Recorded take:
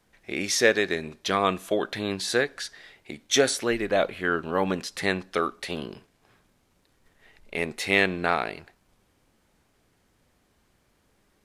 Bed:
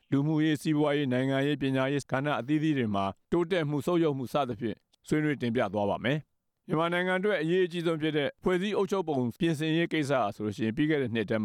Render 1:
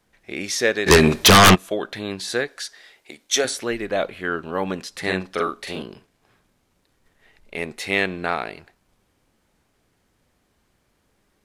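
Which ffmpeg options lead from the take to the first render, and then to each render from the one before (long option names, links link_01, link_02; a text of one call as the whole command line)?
ffmpeg -i in.wav -filter_complex "[0:a]asplit=3[link_01][link_02][link_03];[link_01]afade=type=out:start_time=0.86:duration=0.02[link_04];[link_02]aeval=exprs='0.473*sin(PI/2*8.91*val(0)/0.473)':channel_layout=same,afade=type=in:start_time=0.86:duration=0.02,afade=type=out:start_time=1.54:duration=0.02[link_05];[link_03]afade=type=in:start_time=1.54:duration=0.02[link_06];[link_04][link_05][link_06]amix=inputs=3:normalize=0,asettb=1/sr,asplit=3[link_07][link_08][link_09];[link_07]atrim=end=2.484[link_10];[link_08]atrim=start=2.48:end=3.45,asetpts=PTS-STARTPTS,afade=type=in:duration=0.004:curve=qsin,afade=type=out:start_time=0.966:duration=0.004:curve=qsin,bass=frequency=250:gain=-13,treble=frequency=4000:gain=5[link_11];[link_09]atrim=start=3.446[link_12];[link_10][link_11]acrossfade=duration=0.004:curve1=hsin:curve2=qsin[link_13];[link_13][link_12]acrossfade=duration=0.004:curve1=qsin:curve2=hsin,asettb=1/sr,asplit=3[link_14][link_15][link_16];[link_14]atrim=end=5.004[link_17];[link_15]atrim=start=5:end=5.82,asetpts=PTS-STARTPTS,afade=type=in:duration=0.004:curve=qsin,afade=type=out:start_time=0.816:duration=0.004:curve=qsin,asplit=2[link_18][link_19];[link_19]adelay=43,volume=-2dB[link_20];[link_18][link_20]amix=inputs=2:normalize=0,atrim=end_sample=36162[link_21];[link_16]atrim=start=5.816[link_22];[link_17][link_21]acrossfade=duration=0.004:curve1=hsin:curve2=qsin[link_23];[link_23][link_22]acrossfade=duration=0.004:curve1=qsin:curve2=hsin" out.wav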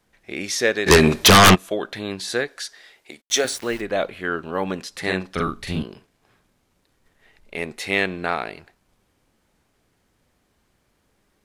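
ffmpeg -i in.wav -filter_complex "[0:a]asplit=3[link_01][link_02][link_03];[link_01]afade=type=out:start_time=3.2:duration=0.02[link_04];[link_02]aeval=exprs='val(0)*gte(abs(val(0)),0.0188)':channel_layout=same,afade=type=in:start_time=3.2:duration=0.02,afade=type=out:start_time=3.8:duration=0.02[link_05];[link_03]afade=type=in:start_time=3.8:duration=0.02[link_06];[link_04][link_05][link_06]amix=inputs=3:normalize=0,asplit=3[link_07][link_08][link_09];[link_07]afade=type=out:start_time=5.35:duration=0.02[link_10];[link_08]asubboost=boost=10:cutoff=160,afade=type=in:start_time=5.35:duration=0.02,afade=type=out:start_time=5.82:duration=0.02[link_11];[link_09]afade=type=in:start_time=5.82:duration=0.02[link_12];[link_10][link_11][link_12]amix=inputs=3:normalize=0" out.wav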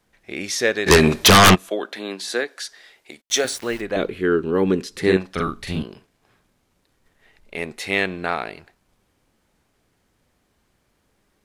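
ffmpeg -i in.wav -filter_complex "[0:a]asettb=1/sr,asplit=3[link_01][link_02][link_03];[link_01]atrim=end=1.704[link_04];[link_02]atrim=start=1.7:end=2.61,asetpts=PTS-STARTPTS,afade=type=in:duration=0.004:curve=qsin,afade=type=out:start_time=0.906:duration=0.004:curve=qsin,highpass=frequency=220:width=0.5412,highpass=frequency=220:width=1.3066[link_05];[link_03]atrim=start=2.606[link_06];[link_04][link_05]acrossfade=duration=0.004:curve1=hsin:curve2=qsin[link_07];[link_07][link_06]acrossfade=duration=0.004:curve1=qsin:curve2=hsin,asettb=1/sr,asplit=3[link_08][link_09][link_10];[link_08]atrim=end=3.964[link_11];[link_09]atrim=start=3.96:end=5.17,asetpts=PTS-STARTPTS,afade=type=in:duration=0.004:curve=qsin,afade=type=out:start_time=1.206:duration=0.004:curve=qsin,lowshelf=frequency=510:width_type=q:width=3:gain=6.5[link_12];[link_10]atrim=start=5.166[link_13];[link_11][link_12]acrossfade=duration=0.004:curve1=hsin:curve2=qsin[link_14];[link_14][link_13]acrossfade=duration=0.004:curve1=qsin:curve2=hsin" out.wav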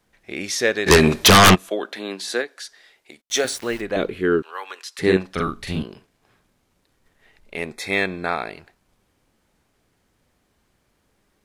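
ffmpeg -i in.wav -filter_complex "[0:a]asettb=1/sr,asplit=3[link_01][link_02][link_03];[link_01]atrim=end=4.424[link_04];[link_02]atrim=start=4.42:end=4.99,asetpts=PTS-STARTPTS,afade=type=in:duration=0.004:curve=qsin,afade=type=out:start_time=0.566:duration=0.004:curve=qsin,highpass=frequency=860:width=0.5412,highpass=frequency=860:width=1.3066[link_05];[link_03]atrim=start=4.986[link_06];[link_04][link_05]acrossfade=duration=0.004:curve1=hsin:curve2=qsin[link_07];[link_07][link_06]acrossfade=duration=0.004:curve1=qsin:curve2=hsin,asettb=1/sr,asplit=3[link_08][link_09][link_10];[link_08]atrim=end=7.724[link_11];[link_09]atrim=start=7.72:end=8.5,asetpts=PTS-STARTPTS,afade=type=in:duration=0.004:curve=qsin,afade=type=out:start_time=0.776:duration=0.004:curve=qsin,asuperstop=centerf=2900:order=20:qfactor=6.1[link_12];[link_10]atrim=start=8.496[link_13];[link_11][link_12]acrossfade=duration=0.004:curve1=hsin:curve2=qsin[link_14];[link_14][link_13]acrossfade=duration=0.004:curve1=qsin:curve2=hsin,asplit=3[link_15][link_16][link_17];[link_15]atrim=end=2.422[link_18];[link_16]atrim=start=2.418:end=3.352,asetpts=PTS-STARTPTS,volume=-4dB[link_19];[link_17]atrim=start=3.348[link_20];[link_18][link_19]acrossfade=duration=0.004:curve1=hsin:curve2=hsin[link_21];[link_21][link_20]acrossfade=duration=0.004:curve1=hsin:curve2=hsin" out.wav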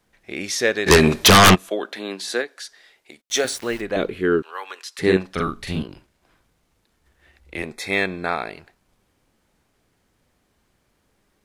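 ffmpeg -i in.wav -filter_complex "[0:a]asplit=3[link_01][link_02][link_03];[link_01]afade=type=out:start_time=5.87:duration=0.02[link_04];[link_02]afreqshift=-79,afade=type=in:start_time=5.87:duration=0.02,afade=type=out:start_time=7.62:duration=0.02[link_05];[link_03]afade=type=in:start_time=7.62:duration=0.02[link_06];[link_04][link_05][link_06]amix=inputs=3:normalize=0" out.wav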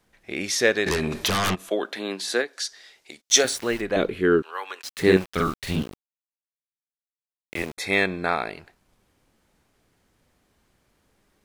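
ffmpeg -i in.wav -filter_complex "[0:a]asettb=1/sr,asplit=3[link_01][link_02][link_03];[link_01]atrim=end=0.864[link_04];[link_02]atrim=start=0.86:end=1.65,asetpts=PTS-STARTPTS,afade=type=in:duration=0.004:curve=qsin,afade=type=out:start_time=0.786:duration=0.004:curve=qsin,acompressor=threshold=-21dB:ratio=16:attack=3.2:release=140:knee=1:detection=peak[link_05];[link_03]atrim=start=1.646[link_06];[link_04][link_05]acrossfade=duration=0.004:curve1=hsin:curve2=qsin[link_07];[link_07][link_06]acrossfade=duration=0.004:curve1=qsin:curve2=hsin,asettb=1/sr,asplit=3[link_08][link_09][link_10];[link_08]atrim=end=2.534[link_11];[link_09]atrim=start=2.53:end=3.43,asetpts=PTS-STARTPTS,afade=type=in:duration=0.004:curve=qsin,afade=type=out:start_time=0.896:duration=0.004:curve=qsin,equalizer=frequency=5700:width=0.9:gain=8[link_12];[link_10]atrim=start=3.426[link_13];[link_11][link_12]acrossfade=duration=0.004:curve1=hsin:curve2=qsin[link_14];[link_14][link_13]acrossfade=duration=0.004:curve1=qsin:curve2=hsin,asettb=1/sr,asplit=3[link_15][link_16][link_17];[link_15]atrim=end=4.824[link_18];[link_16]atrim=start=4.82:end=7.78,asetpts=PTS-STARTPTS,afade=type=in:duration=0.004:curve=qsin,afade=type=out:start_time=2.956:duration=0.004:curve=qsin,aeval=exprs='val(0)*gte(abs(val(0)),0.0188)':channel_layout=same[link_19];[link_17]atrim=start=7.776[link_20];[link_18][link_19]acrossfade=duration=0.004:curve1=hsin:curve2=qsin[link_21];[link_21][link_20]acrossfade=duration=0.004:curve1=qsin:curve2=hsin" out.wav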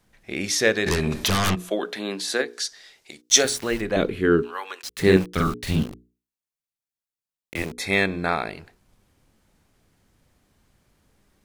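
ffmpeg -i in.wav -af "bass=frequency=250:gain=6,treble=frequency=4000:gain=2,bandreject=frequency=60:width_type=h:width=6,bandreject=frequency=120:width_type=h:width=6,bandreject=frequency=180:width_type=h:width=6,bandreject=frequency=240:width_type=h:width=6,bandreject=frequency=300:width_type=h:width=6,bandreject=frequency=360:width_type=h:width=6,bandreject=frequency=420:width_type=h:width=6,bandreject=frequency=480:width_type=h:width=6" out.wav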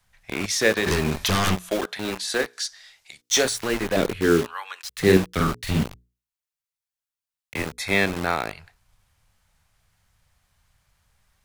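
ffmpeg -i in.wav -filter_complex "[0:a]acrossover=split=150|630|3100[link_01][link_02][link_03][link_04];[link_02]acrusher=bits=4:mix=0:aa=0.000001[link_05];[link_04]asoftclip=type=tanh:threshold=-17dB[link_06];[link_01][link_05][link_03][link_06]amix=inputs=4:normalize=0" out.wav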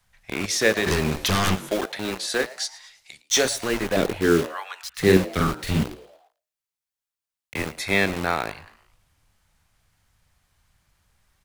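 ffmpeg -i in.wav -filter_complex "[0:a]asplit=5[link_01][link_02][link_03][link_04][link_05];[link_02]adelay=111,afreqshift=140,volume=-19dB[link_06];[link_03]adelay=222,afreqshift=280,volume=-25.7dB[link_07];[link_04]adelay=333,afreqshift=420,volume=-32.5dB[link_08];[link_05]adelay=444,afreqshift=560,volume=-39.2dB[link_09];[link_01][link_06][link_07][link_08][link_09]amix=inputs=5:normalize=0" out.wav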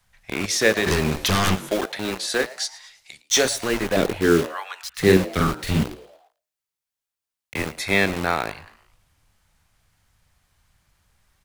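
ffmpeg -i in.wav -af "volume=1.5dB,alimiter=limit=-3dB:level=0:latency=1" out.wav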